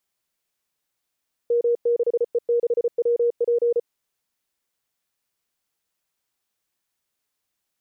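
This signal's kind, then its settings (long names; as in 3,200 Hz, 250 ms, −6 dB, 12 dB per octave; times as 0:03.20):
Morse code "M6E6WP" 34 words per minute 474 Hz −16.5 dBFS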